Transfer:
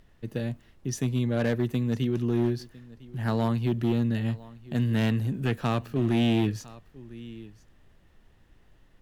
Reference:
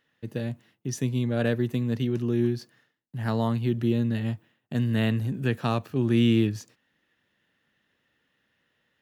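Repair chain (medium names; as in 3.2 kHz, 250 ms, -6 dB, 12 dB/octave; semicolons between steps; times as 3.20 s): clip repair -18.5 dBFS; expander -50 dBFS, range -21 dB; inverse comb 1004 ms -21 dB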